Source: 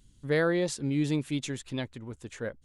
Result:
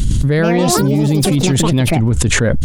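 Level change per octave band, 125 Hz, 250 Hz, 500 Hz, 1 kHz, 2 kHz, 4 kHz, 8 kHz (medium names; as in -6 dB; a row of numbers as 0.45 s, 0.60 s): +21.0 dB, +16.0 dB, +13.5 dB, +20.5 dB, +14.0 dB, +19.0 dB, +22.5 dB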